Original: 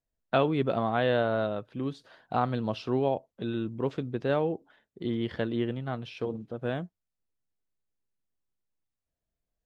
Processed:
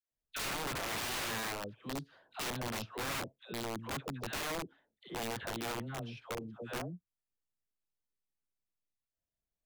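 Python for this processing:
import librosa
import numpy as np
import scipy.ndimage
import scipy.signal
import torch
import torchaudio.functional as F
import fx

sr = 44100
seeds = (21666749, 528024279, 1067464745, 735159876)

y = fx.dispersion(x, sr, late='lows', ms=115.0, hz=730.0)
y = (np.mod(10.0 ** (25.0 / 20.0) * y + 1.0, 2.0) - 1.0) / 10.0 ** (25.0 / 20.0)
y = F.gain(torch.from_numpy(y), -7.5).numpy()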